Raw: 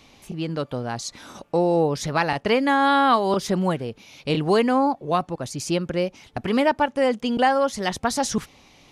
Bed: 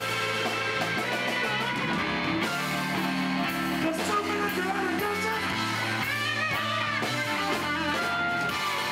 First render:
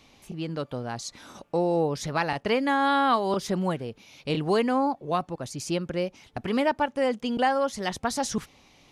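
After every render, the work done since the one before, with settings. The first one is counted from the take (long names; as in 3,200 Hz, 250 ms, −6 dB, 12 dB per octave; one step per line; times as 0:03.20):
level −4.5 dB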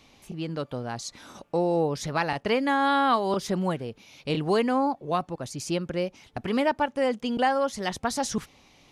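no processing that can be heard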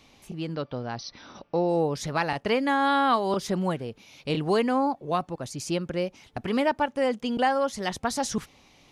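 0:00.55–0:01.69: linear-phase brick-wall low-pass 6,100 Hz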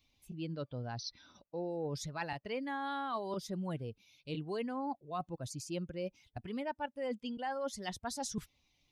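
spectral dynamics exaggerated over time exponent 1.5
reversed playback
downward compressor 6 to 1, threshold −36 dBFS, peak gain reduction 15 dB
reversed playback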